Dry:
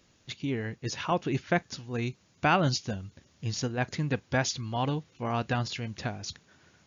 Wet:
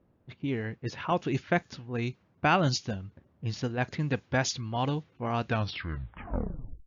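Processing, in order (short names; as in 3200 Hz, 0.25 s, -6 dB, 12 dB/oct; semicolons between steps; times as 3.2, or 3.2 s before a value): tape stop at the end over 1.42 s; low-pass opened by the level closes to 790 Hz, open at -23 dBFS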